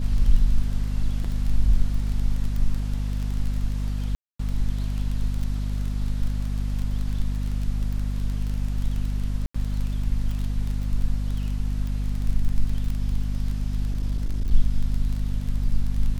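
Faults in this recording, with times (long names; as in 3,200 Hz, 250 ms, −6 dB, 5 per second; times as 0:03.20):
surface crackle 21 per second −27 dBFS
mains hum 50 Hz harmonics 5 −26 dBFS
0:01.24–0:01.25: drop-out 5.3 ms
0:04.15–0:04.39: drop-out 244 ms
0:09.46–0:09.54: drop-out 85 ms
0:13.90–0:14.51: clipping −20 dBFS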